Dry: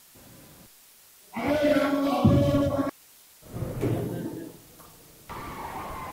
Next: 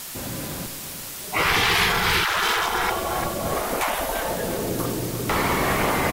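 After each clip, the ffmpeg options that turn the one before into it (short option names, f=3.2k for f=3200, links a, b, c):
-filter_complex "[0:a]asplit=2[a][b];[b]adelay=343,lowpass=f=4.2k:p=1,volume=-9.5dB,asplit=2[c][d];[d]adelay=343,lowpass=f=4.2k:p=1,volume=0.55,asplit=2[e][f];[f]adelay=343,lowpass=f=4.2k:p=1,volume=0.55,asplit=2[g][h];[h]adelay=343,lowpass=f=4.2k:p=1,volume=0.55,asplit=2[i][j];[j]adelay=343,lowpass=f=4.2k:p=1,volume=0.55,asplit=2[k][l];[l]adelay=343,lowpass=f=4.2k:p=1,volume=0.55[m];[a][c][e][g][i][k][m]amix=inputs=7:normalize=0,aeval=exprs='0.355*sin(PI/2*2.82*val(0)/0.355)':c=same,afftfilt=real='re*lt(hypot(re,im),0.251)':imag='im*lt(hypot(re,im),0.251)':win_size=1024:overlap=0.75,volume=6dB"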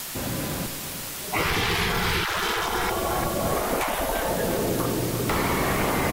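-filter_complex "[0:a]acrossover=split=480|3900[a][b][c];[a]acompressor=threshold=-27dB:ratio=4[d];[b]acompressor=threshold=-29dB:ratio=4[e];[c]acompressor=threshold=-36dB:ratio=4[f];[d][e][f]amix=inputs=3:normalize=0,asplit=2[g][h];[h]aeval=exprs='(mod(6.68*val(0)+1,2)-1)/6.68':c=same,volume=-8dB[i];[g][i]amix=inputs=2:normalize=0"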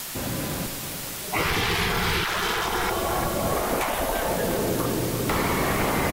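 -af "aecho=1:1:506:0.211"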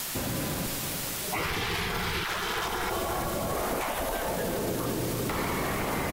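-af "alimiter=limit=-21dB:level=0:latency=1:release=84"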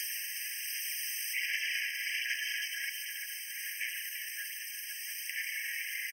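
-af "aphaser=in_gain=1:out_gain=1:delay=2.7:decay=0.34:speed=1.3:type=sinusoidal,afftfilt=real='re*eq(mod(floor(b*sr/1024/1600),2),1)':imag='im*eq(mod(floor(b*sr/1024/1600),2),1)':win_size=1024:overlap=0.75"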